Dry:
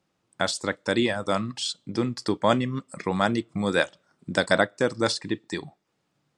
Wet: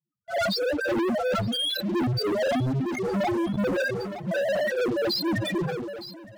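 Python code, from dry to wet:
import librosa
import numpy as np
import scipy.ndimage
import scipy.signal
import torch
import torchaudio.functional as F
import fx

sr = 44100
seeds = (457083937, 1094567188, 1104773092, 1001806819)

y = fx.phase_scramble(x, sr, seeds[0], window_ms=200)
y = scipy.signal.sosfilt(scipy.signal.butter(2, 7100.0, 'lowpass', fs=sr, output='sos'), y)
y = fx.hum_notches(y, sr, base_hz=60, count=4)
y = fx.dereverb_blind(y, sr, rt60_s=1.7)
y = fx.rider(y, sr, range_db=10, speed_s=2.0)
y = fx.spec_topn(y, sr, count=2)
y = fx.leveller(y, sr, passes=5)
y = fx.echo_feedback(y, sr, ms=914, feedback_pct=37, wet_db=-20.0)
y = fx.sustainer(y, sr, db_per_s=30.0)
y = y * librosa.db_to_amplitude(-2.5)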